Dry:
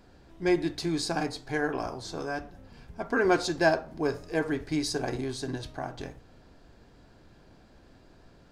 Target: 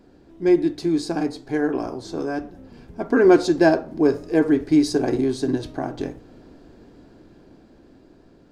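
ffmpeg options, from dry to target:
ffmpeg -i in.wav -af "equalizer=frequency=310:width=0.9:gain=12,dynaudnorm=framelen=380:gausssize=11:maxgain=11.5dB,volume=-2.5dB" out.wav

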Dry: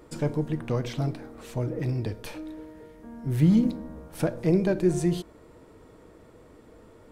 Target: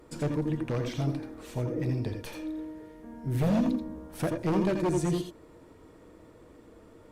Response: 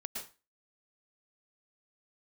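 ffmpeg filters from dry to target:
-filter_complex "[0:a]aeval=exprs='0.126*(abs(mod(val(0)/0.126+3,4)-2)-1)':channel_layout=same[link_01];[1:a]atrim=start_sample=2205,afade=type=out:start_time=0.16:duration=0.01,atrim=end_sample=7497,asetrate=57330,aresample=44100[link_02];[link_01][link_02]afir=irnorm=-1:irlink=0,volume=3.5dB" -ar 48000 -c:a libopus -b:a 64k

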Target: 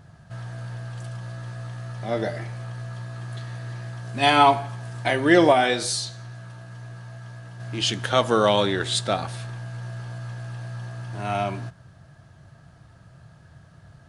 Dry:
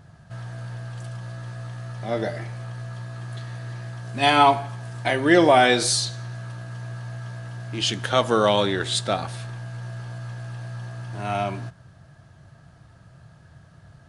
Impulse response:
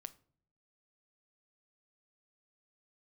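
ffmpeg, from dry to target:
-filter_complex "[0:a]asplit=3[link_01][link_02][link_03];[link_01]afade=type=out:start_time=5.52:duration=0.02[link_04];[link_02]flanger=delay=9.5:depth=2.8:regen=71:speed=1.9:shape=sinusoidal,afade=type=in:start_time=5.52:duration=0.02,afade=type=out:start_time=7.59:duration=0.02[link_05];[link_03]afade=type=in:start_time=7.59:duration=0.02[link_06];[link_04][link_05][link_06]amix=inputs=3:normalize=0"

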